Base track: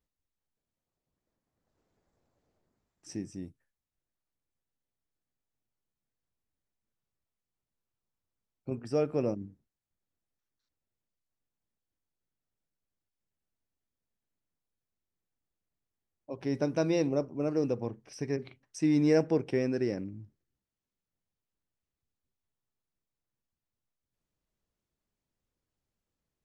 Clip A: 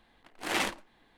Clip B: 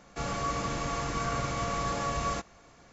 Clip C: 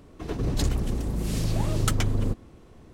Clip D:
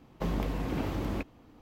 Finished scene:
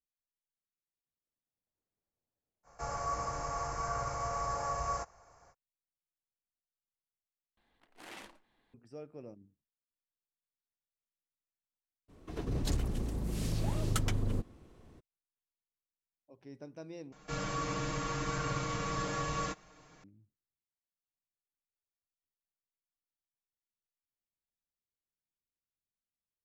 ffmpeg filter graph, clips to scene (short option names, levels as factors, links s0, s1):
-filter_complex "[2:a]asplit=2[s0][s1];[0:a]volume=0.119[s2];[s0]firequalizer=gain_entry='entry(100,0);entry(220,-14);entry(480,-1);entry(810,5);entry(3500,-18);entry(5100,0)':delay=0.05:min_phase=1[s3];[1:a]acompressor=threshold=0.00708:ratio=2:attack=8.5:release=90:knee=1:detection=peak[s4];[s1]aecho=1:1:6.5:0.75[s5];[s2]asplit=3[s6][s7][s8];[s6]atrim=end=7.574[s9];[s4]atrim=end=1.17,asetpts=PTS-STARTPTS,volume=0.282[s10];[s7]atrim=start=8.736:end=17.124[s11];[s5]atrim=end=2.92,asetpts=PTS-STARTPTS,volume=0.562[s12];[s8]atrim=start=20.036[s13];[s3]atrim=end=2.92,asetpts=PTS-STARTPTS,volume=0.562,afade=t=in:d=0.05,afade=t=out:st=2.87:d=0.05,adelay=2630[s14];[3:a]atrim=end=2.93,asetpts=PTS-STARTPTS,volume=0.422,afade=t=in:d=0.02,afade=t=out:st=2.91:d=0.02,adelay=12080[s15];[s9][s10]acrossfade=d=0.004:c1=hsin:c2=hsin[s16];[s16][s11]acrossfade=d=0.004:c1=hsin:c2=hsin[s17];[s17][s12]acrossfade=d=0.004:c1=hsin:c2=hsin[s18];[s18][s13]acrossfade=d=0.004:c1=hsin:c2=hsin[s19];[s19][s14][s15]amix=inputs=3:normalize=0"